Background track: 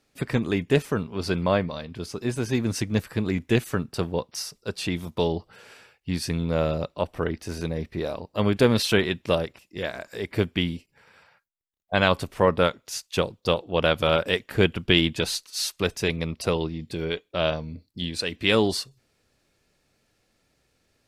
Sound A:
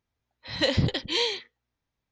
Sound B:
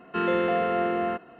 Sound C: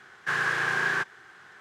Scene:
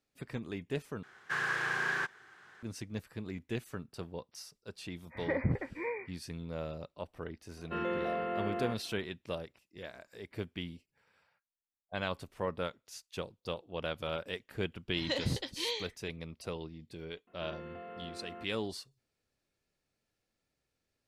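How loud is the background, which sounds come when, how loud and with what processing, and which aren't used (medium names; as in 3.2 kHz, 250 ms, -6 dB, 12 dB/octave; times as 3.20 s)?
background track -15.5 dB
1.03 s: replace with C -6.5 dB
4.67 s: add A -7 dB + brick-wall FIR low-pass 2.5 kHz
7.57 s: add B -10 dB
14.48 s: add A -10 dB
17.27 s: add B -16.5 dB + compression, threshold -26 dBFS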